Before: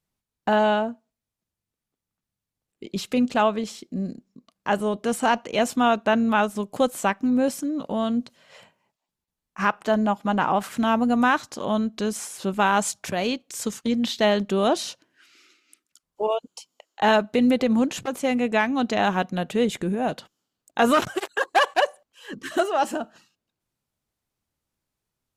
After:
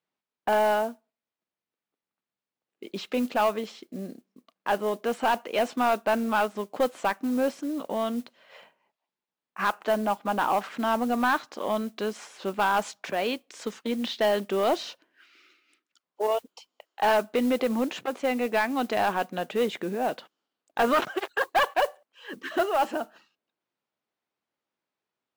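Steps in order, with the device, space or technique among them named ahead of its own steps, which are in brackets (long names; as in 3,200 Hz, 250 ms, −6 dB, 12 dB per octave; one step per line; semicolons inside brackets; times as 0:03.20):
carbon microphone (band-pass filter 320–3,500 Hz; soft clipping −15.5 dBFS, distortion −13 dB; noise that follows the level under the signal 23 dB)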